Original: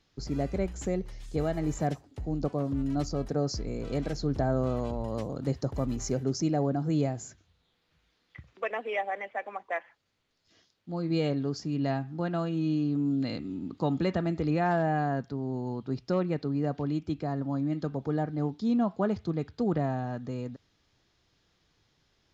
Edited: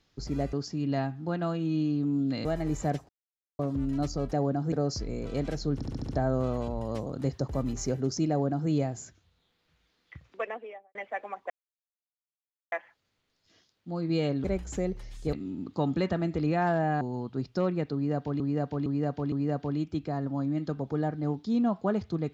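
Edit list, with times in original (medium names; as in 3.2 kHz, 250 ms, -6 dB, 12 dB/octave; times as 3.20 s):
0.53–1.42 s: swap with 11.45–13.37 s
2.06–2.56 s: mute
4.32 s: stutter 0.07 s, 6 plays
6.53–6.92 s: copy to 3.30 s
8.53–9.18 s: studio fade out
9.73 s: insert silence 1.22 s
15.05–15.54 s: delete
16.47–16.93 s: loop, 4 plays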